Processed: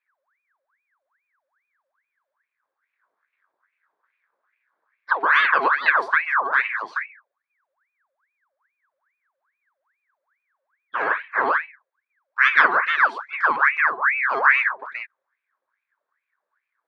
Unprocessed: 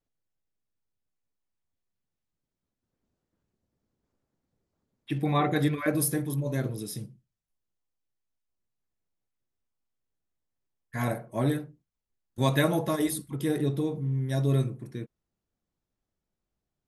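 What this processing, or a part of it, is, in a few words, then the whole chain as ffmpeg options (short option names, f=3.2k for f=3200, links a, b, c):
voice changer toy: -af "lowpass=9.3k,aeval=exprs='val(0)*sin(2*PI*1500*n/s+1500*0.65/2.4*sin(2*PI*2.4*n/s))':c=same,highpass=510,equalizer=f=750:t=q:w=4:g=-6,equalizer=f=1.1k:t=q:w=4:g=6,equalizer=f=1.6k:t=q:w=4:g=9,equalizer=f=2.9k:t=q:w=4:g=-10,lowpass=f=3.5k:w=0.5412,lowpass=f=3.5k:w=1.3066,volume=8dB"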